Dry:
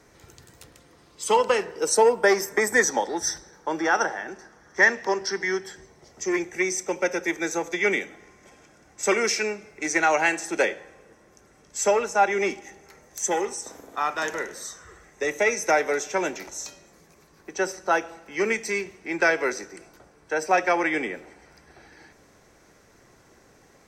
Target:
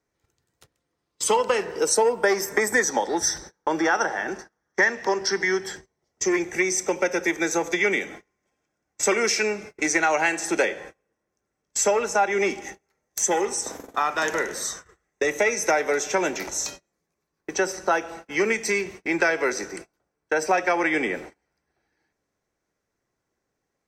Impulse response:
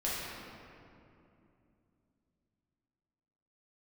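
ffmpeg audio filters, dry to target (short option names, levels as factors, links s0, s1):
-af "agate=range=0.0282:threshold=0.00631:ratio=16:detection=peak,acompressor=threshold=0.0355:ratio=2.5,volume=2.37"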